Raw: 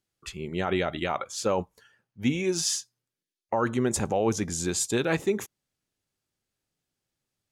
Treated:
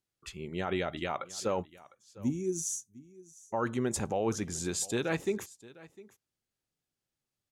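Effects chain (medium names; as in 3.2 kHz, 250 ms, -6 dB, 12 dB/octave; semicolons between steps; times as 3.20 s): time-frequency box 1.66–3.54 s, 410–5600 Hz -19 dB; delay 704 ms -20.5 dB; trim -5.5 dB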